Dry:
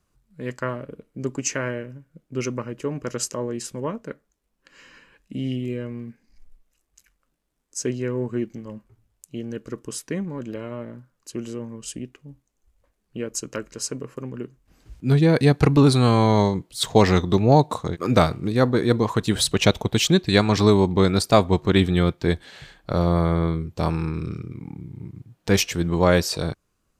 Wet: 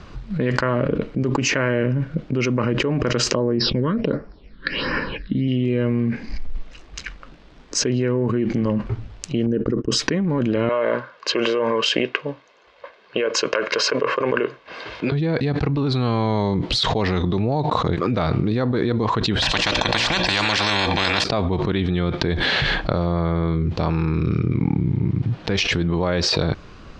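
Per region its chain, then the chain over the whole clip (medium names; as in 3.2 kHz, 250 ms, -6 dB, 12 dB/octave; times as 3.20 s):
3.35–5.48 s: phase shifter stages 8, 1.4 Hz, lowest notch 730–3500 Hz + brick-wall FIR low-pass 5.7 kHz
9.46–10.02 s: resonances exaggerated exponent 1.5 + gate -47 dBFS, range -17 dB + distance through air 51 m
10.69–15.12 s: band-pass 570–4200 Hz + comb 1.9 ms, depth 43%
19.42–21.24 s: hum notches 60/120/180/240/300/360/420/480/540/600 Hz + comb 1.2 ms, depth 96% + spectrum-flattening compressor 10:1
whole clip: low-pass 4.5 kHz 24 dB/octave; level flattener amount 100%; trim -9 dB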